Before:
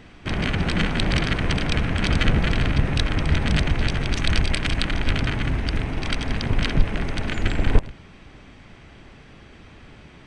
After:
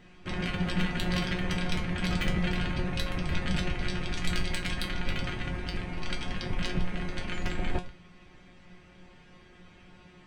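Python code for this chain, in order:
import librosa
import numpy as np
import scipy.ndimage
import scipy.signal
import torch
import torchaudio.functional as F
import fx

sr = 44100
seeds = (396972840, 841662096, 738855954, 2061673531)

y = 10.0 ** (-9.5 / 20.0) * (np.abs((x / 10.0 ** (-9.5 / 20.0) + 3.0) % 4.0 - 2.0) - 1.0)
y = fx.comb_fb(y, sr, f0_hz=180.0, decay_s=0.24, harmonics='all', damping=0.0, mix_pct=90)
y = F.gain(torch.from_numpy(y), 2.5).numpy()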